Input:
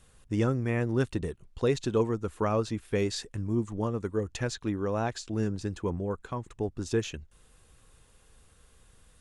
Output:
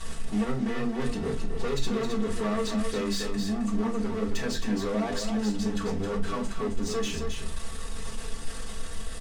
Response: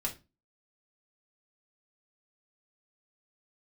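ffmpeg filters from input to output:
-filter_complex "[0:a]aeval=exprs='val(0)+0.5*0.0168*sgn(val(0))':c=same,lowpass=f=9.5k:w=0.5412,lowpass=f=9.5k:w=1.3066,bandreject=f=50:t=h:w=6,bandreject=f=100:t=h:w=6,bandreject=f=150:t=h:w=6,bandreject=f=200:t=h:w=6,aecho=1:1:4.5:0.94,asoftclip=type=tanh:threshold=-28dB,aecho=1:1:266:0.501[a];[1:a]atrim=start_sample=2205[b];[a][b]afir=irnorm=-1:irlink=0,volume=-2dB"

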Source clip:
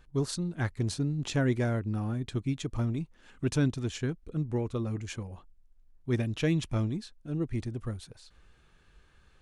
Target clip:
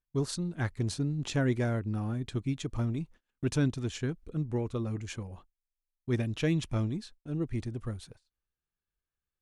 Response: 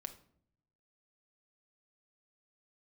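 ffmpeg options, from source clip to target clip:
-af "agate=range=-31dB:threshold=-49dB:ratio=16:detection=peak,volume=-1dB"

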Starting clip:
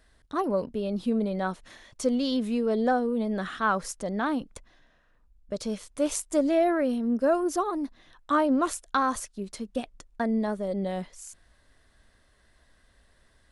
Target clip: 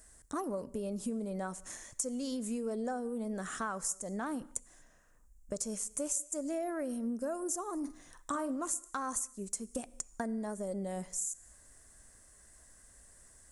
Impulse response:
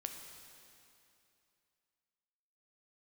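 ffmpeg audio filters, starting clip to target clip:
-filter_complex "[0:a]highshelf=f=5.3k:t=q:w=3:g=12.5,acompressor=threshold=-33dB:ratio=6,asettb=1/sr,asplit=3[a][b][c];[a]atrim=end=7.784[d];[b]atrim=start=7.78:end=8.51,asetpts=PTS-STARTPTS,afade=t=in:d=0.004:c=qsin,afade=t=out:st=0.726:d=0.004:c=qsin,asplit=2[e][f];[f]adelay=45,volume=-10.5dB[g];[e][g]amix=inputs=2:normalize=0,atrim=end_sample=32193[h];[c]atrim=start=8.506[i];[d][h]acrossfade=d=0.004:c1=hsin:c2=qsin[j];[j][i]acrossfade=d=0.004:c1=qsin:c2=hsin,asplit=2[k][l];[1:a]atrim=start_sample=2205,afade=t=out:st=0.3:d=0.01,atrim=end_sample=13671[m];[l][m]afir=irnorm=-1:irlink=0,volume=-9dB[n];[k][n]amix=inputs=2:normalize=0,volume=-3dB"

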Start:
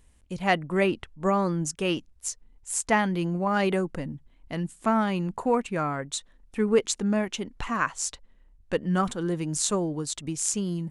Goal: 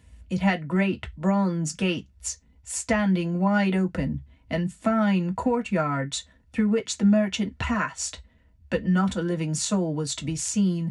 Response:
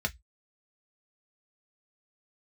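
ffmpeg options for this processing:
-filter_complex "[0:a]highpass=48,acompressor=threshold=-27dB:ratio=5[a];[1:a]atrim=start_sample=2205[b];[a][b]afir=irnorm=-1:irlink=0"

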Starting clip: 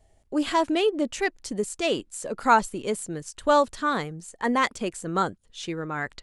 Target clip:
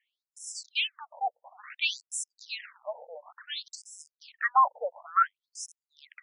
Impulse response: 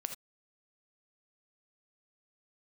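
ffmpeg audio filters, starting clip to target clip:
-filter_complex "[0:a]highpass=360,highshelf=f=4.3k:g=6,acrossover=split=580|2900[a][b][c];[c]acrusher=bits=4:dc=4:mix=0:aa=0.000001[d];[a][b][d]amix=inputs=3:normalize=0,afftfilt=real='re*between(b*sr/1024,630*pow(7500/630,0.5+0.5*sin(2*PI*0.57*pts/sr))/1.41,630*pow(7500/630,0.5+0.5*sin(2*PI*0.57*pts/sr))*1.41)':imag='im*between(b*sr/1024,630*pow(7500/630,0.5+0.5*sin(2*PI*0.57*pts/sr))/1.41,630*pow(7500/630,0.5+0.5*sin(2*PI*0.57*pts/sr))*1.41)':win_size=1024:overlap=0.75,volume=4.5dB"

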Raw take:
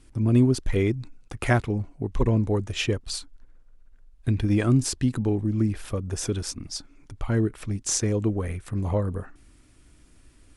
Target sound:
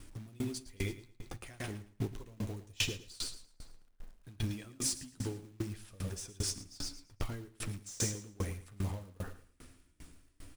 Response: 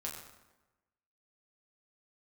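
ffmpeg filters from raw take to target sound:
-filter_complex "[0:a]asettb=1/sr,asplit=3[a][b][c];[a]atrim=end=2.514[d];[b]atrim=start=2.51:end=3.14,asetpts=PTS-STARTPTS,afade=t=in:d=0.004:c=qsin,afade=t=out:st=0.626:d=0.004:c=qsin,equalizer=f=1.4k:w=0.69:g=-7[e];[c]atrim=start=3.136[f];[d][e]acrossfade=d=0.004:c1=hsin:c2=qsin[g];[g][f]acrossfade=d=0.004:c1=qsin:c2=hsin,acrossover=split=3100[h][i];[h]acompressor=threshold=-35dB:ratio=8[j];[j][i]amix=inputs=2:normalize=0,flanger=delay=10:depth=1.8:regen=-32:speed=0.47:shape=triangular,asoftclip=type=tanh:threshold=-31dB,acrusher=bits=4:mode=log:mix=0:aa=0.000001,aecho=1:1:112|224|336|448|560|672:0.398|0.195|0.0956|0.0468|0.023|0.0112,asplit=2[k][l];[1:a]atrim=start_sample=2205,asetrate=66150,aresample=44100,adelay=42[m];[l][m]afir=irnorm=-1:irlink=0,volume=-13dB[n];[k][n]amix=inputs=2:normalize=0,aeval=exprs='val(0)*pow(10,-28*if(lt(mod(2.5*n/s,1),2*abs(2.5)/1000),1-mod(2.5*n/s,1)/(2*abs(2.5)/1000),(mod(2.5*n/s,1)-2*abs(2.5)/1000)/(1-2*abs(2.5)/1000))/20)':c=same,volume=9dB"

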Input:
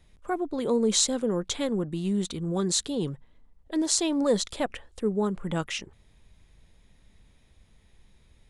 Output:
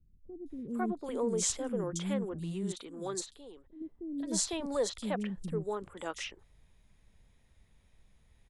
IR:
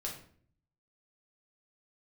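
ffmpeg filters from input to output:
-filter_complex "[0:a]asettb=1/sr,asplit=3[a][b][c];[a]atrim=end=0.534[d];[b]atrim=start=0.53:end=1.82,asetpts=PTS-STARTPTS,afade=t=in:d=0.004:c=qsin,afade=t=out:st=1.286:d=0.004:c=qsin,equalizer=f=4k:w=5.2:g=-12[e];[c]atrim=start=1.816[f];[d][e]acrossfade=d=0.004:c1=hsin:c2=qsin[g];[g][f]acrossfade=d=0.004:c1=qsin:c2=hsin,asplit=3[h][i][j];[h]afade=t=out:st=2.73:d=0.02[k];[i]acompressor=threshold=-47dB:ratio=2,afade=t=in:st=2.73:d=0.02,afade=t=out:st=3.8:d=0.02[l];[j]afade=t=in:st=3.8:d=0.02[m];[k][l][m]amix=inputs=3:normalize=0,acrossover=split=300|4000[n][o][p];[p]adelay=460[q];[o]adelay=500[r];[n][r][q]amix=inputs=3:normalize=0,volume=-5.5dB"

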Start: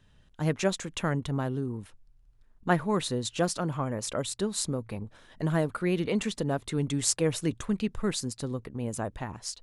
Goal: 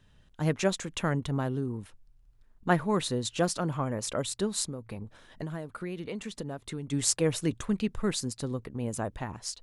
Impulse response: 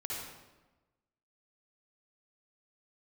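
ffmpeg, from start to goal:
-filter_complex "[0:a]asplit=3[a][b][c];[a]afade=t=out:st=4.64:d=0.02[d];[b]acompressor=threshold=-34dB:ratio=6,afade=t=in:st=4.64:d=0.02,afade=t=out:st=6.91:d=0.02[e];[c]afade=t=in:st=6.91:d=0.02[f];[d][e][f]amix=inputs=3:normalize=0"

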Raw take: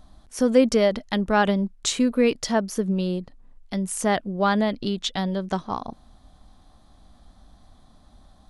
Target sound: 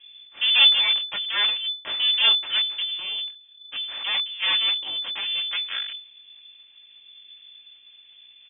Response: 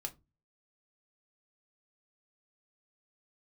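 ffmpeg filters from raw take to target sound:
-af "aecho=1:1:3.8:0.76,flanger=delay=16.5:depth=6.1:speed=0.74,aeval=exprs='abs(val(0))':c=same,lowpass=f=3k:t=q:w=0.5098,lowpass=f=3k:t=q:w=0.6013,lowpass=f=3k:t=q:w=0.9,lowpass=f=3k:t=q:w=2.563,afreqshift=-3500,lowshelf=f=140:g=-4.5"

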